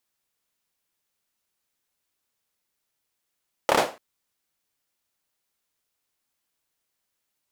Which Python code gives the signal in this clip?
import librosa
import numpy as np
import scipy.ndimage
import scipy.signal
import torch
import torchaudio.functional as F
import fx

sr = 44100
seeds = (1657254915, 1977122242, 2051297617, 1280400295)

y = fx.drum_clap(sr, seeds[0], length_s=0.29, bursts=4, spacing_ms=28, hz=590.0, decay_s=0.31)